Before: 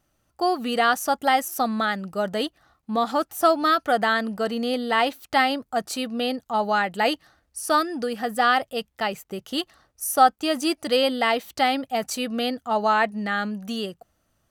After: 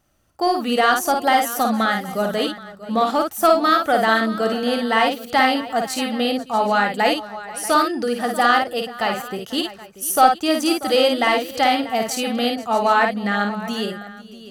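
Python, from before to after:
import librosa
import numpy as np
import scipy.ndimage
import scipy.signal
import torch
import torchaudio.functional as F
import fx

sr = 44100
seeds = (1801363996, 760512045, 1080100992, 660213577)

p1 = 10.0 ** (-16.5 / 20.0) * np.tanh(x / 10.0 ** (-16.5 / 20.0))
p2 = x + (p1 * 10.0 ** (-6.0 / 20.0))
y = fx.echo_multitap(p2, sr, ms=(54, 491, 637, 775), db=(-4.5, -19.5, -15.5, -19.0))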